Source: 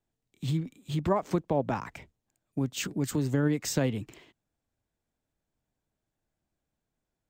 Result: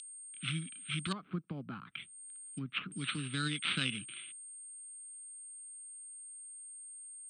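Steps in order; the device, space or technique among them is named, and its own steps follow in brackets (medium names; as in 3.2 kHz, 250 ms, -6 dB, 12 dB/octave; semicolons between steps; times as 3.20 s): toy sound module (decimation joined by straight lines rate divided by 8×; class-D stage that switches slowly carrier 8.6 kHz; cabinet simulation 540–3600 Hz, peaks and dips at 620 Hz -7 dB, 920 Hz -10 dB, 1.3 kHz +9 dB, 1.9 kHz -9 dB, 3.5 kHz -3 dB); 1.12–2.92 s: low-pass that closes with the level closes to 860 Hz, closed at -36.5 dBFS; FFT filter 180 Hz 0 dB, 490 Hz -30 dB, 770 Hz -29 dB, 3.8 kHz +14 dB, 9.1 kHz +10 dB; trim +13 dB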